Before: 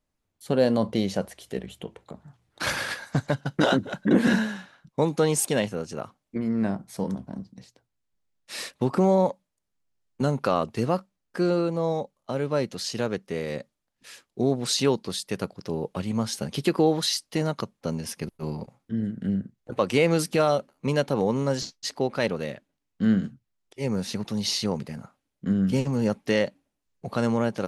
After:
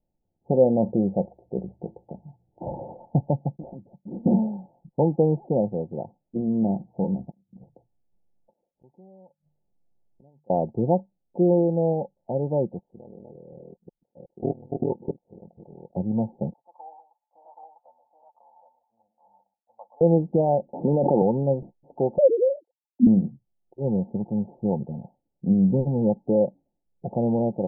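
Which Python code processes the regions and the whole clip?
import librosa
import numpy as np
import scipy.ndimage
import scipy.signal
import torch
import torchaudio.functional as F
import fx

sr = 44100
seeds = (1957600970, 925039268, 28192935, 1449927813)

y = fx.chain(x, sr, fx.median_filter(points=41),
    fx.tone_stack(knobs='5-5-5'), at=(3.56, 4.26))
y = fx.chain(y, sr, fx.hum_notches(base_hz=50, count=3),
    fx.gate_flip(shuts_db=-28.0, range_db=-39),
    fx.over_compress(threshold_db=-49.0, ratio=-0.5), at=(7.3, 10.5))
y = fx.chain(y, sr, fx.reverse_delay(ms=366, wet_db=-3.5),
    fx.level_steps(step_db=22),
    fx.ring_mod(carrier_hz=20.0), at=(12.79, 15.96))
y = fx.chain(y, sr, fx.cheby2_highpass(hz=410.0, order=4, stop_db=50),
    fx.echo_multitap(ms=(127, 776), db=(-12.0, -4.5)), at=(16.53, 20.01))
y = fx.chain(y, sr, fx.highpass(hz=200.0, slope=12),
    fx.air_absorb(metres=370.0),
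    fx.env_flatten(amount_pct=100), at=(20.73, 21.22))
y = fx.chain(y, sr, fx.sine_speech(),
    fx.peak_eq(hz=350.0, db=8.0, octaves=3.0), at=(22.18, 23.07))
y = scipy.signal.sosfilt(scipy.signal.cheby1(8, 1.0, 880.0, 'lowpass', fs=sr, output='sos'), y)
y = y + 0.31 * np.pad(y, (int(5.7 * sr / 1000.0), 0))[:len(y)]
y = F.gain(torch.from_numpy(y), 2.5).numpy()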